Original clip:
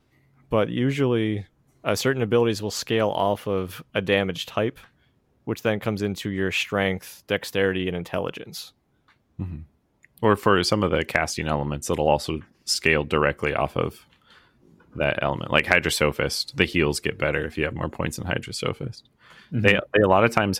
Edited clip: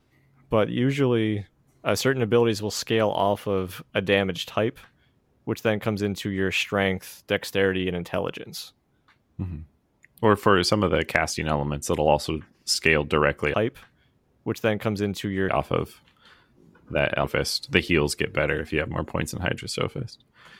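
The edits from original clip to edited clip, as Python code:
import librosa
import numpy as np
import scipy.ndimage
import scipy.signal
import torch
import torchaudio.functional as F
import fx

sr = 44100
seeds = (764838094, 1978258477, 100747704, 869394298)

y = fx.edit(x, sr, fx.duplicate(start_s=4.55, length_s=1.95, to_s=13.54),
    fx.cut(start_s=15.29, length_s=0.8), tone=tone)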